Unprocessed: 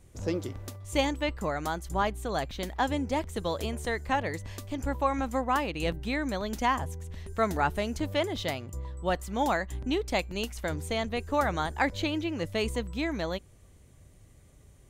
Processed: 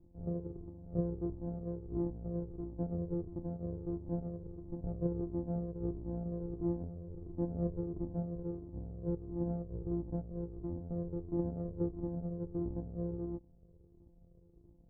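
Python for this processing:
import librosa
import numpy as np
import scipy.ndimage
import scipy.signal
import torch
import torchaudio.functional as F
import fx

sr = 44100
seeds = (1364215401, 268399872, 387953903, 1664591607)

y = np.r_[np.sort(x[:len(x) // 256 * 256].reshape(-1, 256), axis=1).ravel(), x[len(x) // 256 * 256:]]
y = fx.ladder_lowpass(y, sr, hz=500.0, resonance_pct=40)
y = fx.comb_cascade(y, sr, direction='falling', hz=1.5)
y = F.gain(torch.from_numpy(y), 5.0).numpy()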